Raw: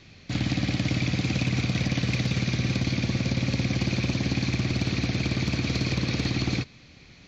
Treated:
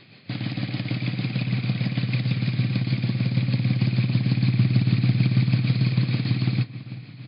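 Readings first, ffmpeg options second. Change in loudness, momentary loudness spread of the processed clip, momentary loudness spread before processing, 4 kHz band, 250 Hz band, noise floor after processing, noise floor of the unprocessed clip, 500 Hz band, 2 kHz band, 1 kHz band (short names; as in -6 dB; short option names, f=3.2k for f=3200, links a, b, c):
+3.0 dB, 8 LU, 1 LU, -3.0 dB, +1.5 dB, -43 dBFS, -51 dBFS, -4.5 dB, -3.0 dB, -3.5 dB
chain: -filter_complex "[0:a]asplit=2[a][b];[b]acompressor=threshold=-35dB:ratio=6,volume=1dB[c];[a][c]amix=inputs=2:normalize=0,asplit=2[d][e];[e]adelay=388,lowpass=f=2.3k:p=1,volume=-14dB,asplit=2[f][g];[g]adelay=388,lowpass=f=2.3k:p=1,volume=0.53,asplit=2[h][i];[i]adelay=388,lowpass=f=2.3k:p=1,volume=0.53,asplit=2[j][k];[k]adelay=388,lowpass=f=2.3k:p=1,volume=0.53,asplit=2[l][m];[m]adelay=388,lowpass=f=2.3k:p=1,volume=0.53[n];[d][f][h][j][l][n]amix=inputs=6:normalize=0,tremolo=f=6.5:d=0.46,asubboost=boost=5:cutoff=180,afftfilt=real='re*between(b*sr/4096,100,5100)':imag='im*between(b*sr/4096,100,5100)':win_size=4096:overlap=0.75,volume=-3dB"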